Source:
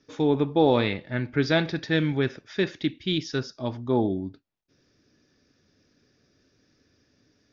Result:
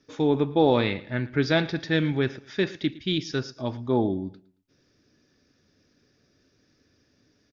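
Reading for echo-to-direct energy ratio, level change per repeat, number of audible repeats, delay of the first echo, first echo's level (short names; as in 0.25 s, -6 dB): -19.5 dB, -9.5 dB, 2, 0.112 s, -20.0 dB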